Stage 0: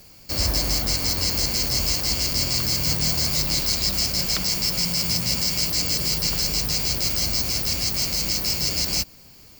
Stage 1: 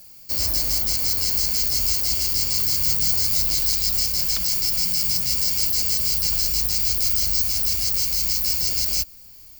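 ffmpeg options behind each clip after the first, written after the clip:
-af "asubboost=boost=3:cutoff=79,crystalizer=i=2:c=0,volume=-8dB"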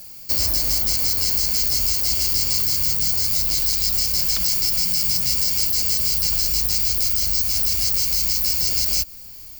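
-af "acompressor=threshold=-22dB:ratio=6,volume=6dB"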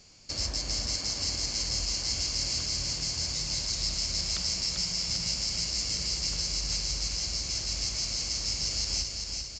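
-af "aecho=1:1:394|788|1182|1576|1970|2364|2758|3152:0.562|0.326|0.189|0.11|0.0636|0.0369|0.0214|0.0124,volume=-6.5dB" -ar 16000 -c:a pcm_mulaw

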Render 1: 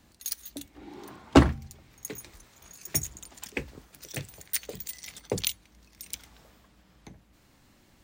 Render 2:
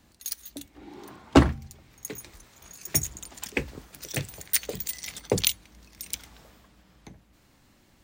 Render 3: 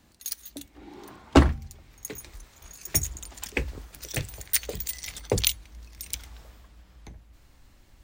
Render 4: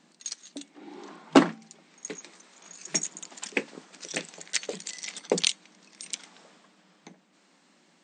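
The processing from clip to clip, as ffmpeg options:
-af "dynaudnorm=f=350:g=11:m=11.5dB"
-af "asubboost=boost=5.5:cutoff=72"
-af "afftfilt=real='re*between(b*sr/4096,160,8800)':imag='im*between(b*sr/4096,160,8800)':win_size=4096:overlap=0.75,volume=1dB"

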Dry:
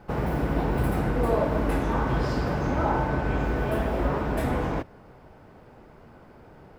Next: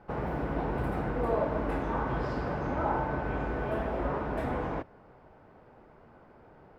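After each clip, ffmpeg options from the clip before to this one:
-af "lowpass=f=1.2k:p=1,lowshelf=f=440:g=-8.5"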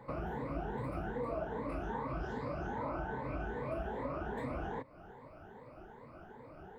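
-af "afftfilt=real='re*pow(10,16/40*sin(2*PI*(1*log(max(b,1)*sr/1024/100)/log(2)-(2.5)*(pts-256)/sr)))':imag='im*pow(10,16/40*sin(2*PI*(1*log(max(b,1)*sr/1024/100)/log(2)-(2.5)*(pts-256)/sr)))':win_size=1024:overlap=0.75,acompressor=threshold=-41dB:ratio=2.5"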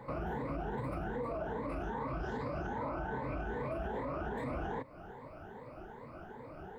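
-af "alimiter=level_in=10dB:limit=-24dB:level=0:latency=1:release=38,volume=-10dB,volume=4dB"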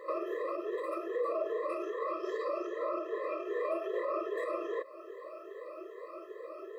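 -af "afftfilt=real='re*eq(mod(floor(b*sr/1024/340),2),1)':imag='im*eq(mod(floor(b*sr/1024/340),2),1)':win_size=1024:overlap=0.75,volume=7dB"

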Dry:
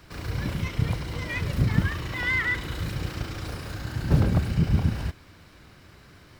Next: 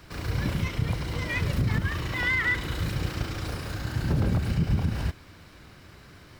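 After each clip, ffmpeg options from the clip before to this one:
-af "alimiter=limit=-17.5dB:level=0:latency=1:release=114,volume=1.5dB"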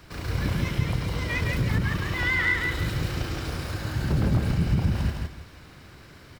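-af "aecho=1:1:161|322|483|644:0.668|0.174|0.0452|0.0117"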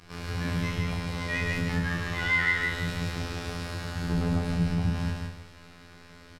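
-af "afftfilt=real='hypot(re,im)*cos(PI*b)':imag='0':win_size=2048:overlap=0.75,lowpass=11k,aecho=1:1:30|66|109.2|161|223.2:0.631|0.398|0.251|0.158|0.1"

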